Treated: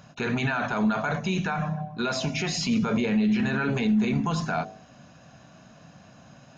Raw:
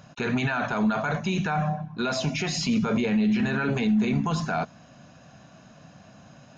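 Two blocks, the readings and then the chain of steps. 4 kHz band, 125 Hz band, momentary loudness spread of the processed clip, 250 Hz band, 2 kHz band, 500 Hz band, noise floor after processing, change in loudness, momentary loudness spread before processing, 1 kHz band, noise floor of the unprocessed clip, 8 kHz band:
0.0 dB, -1.0 dB, 6 LU, -0.5 dB, 0.0 dB, -1.0 dB, -52 dBFS, -0.5 dB, 6 LU, -1.0 dB, -52 dBFS, no reading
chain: de-hum 50.36 Hz, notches 15; endings held to a fixed fall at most 250 dB/s

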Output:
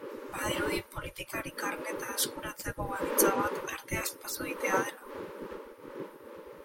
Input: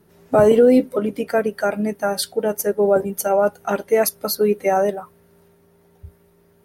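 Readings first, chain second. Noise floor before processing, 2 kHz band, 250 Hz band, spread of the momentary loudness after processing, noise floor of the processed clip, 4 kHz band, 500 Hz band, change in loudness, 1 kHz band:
-57 dBFS, -4.0 dB, -15.5 dB, 17 LU, -52 dBFS, -6.5 dB, -18.0 dB, -14.0 dB, -10.5 dB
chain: wind noise 140 Hz -17 dBFS; Butterworth band-stop 710 Hz, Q 2.3; spectral gate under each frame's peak -20 dB weak

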